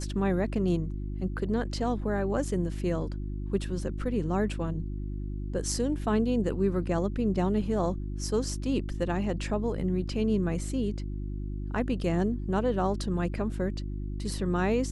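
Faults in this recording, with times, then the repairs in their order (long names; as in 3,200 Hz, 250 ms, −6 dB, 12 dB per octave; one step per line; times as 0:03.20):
mains hum 50 Hz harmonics 7 −34 dBFS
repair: hum removal 50 Hz, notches 7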